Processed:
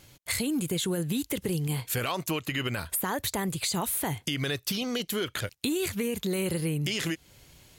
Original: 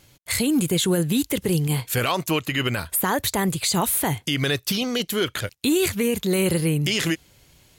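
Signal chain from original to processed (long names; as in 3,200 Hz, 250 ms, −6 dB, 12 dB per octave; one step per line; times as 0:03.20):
downward compressor 3 to 1, threshold −29 dBFS, peak gain reduction 9 dB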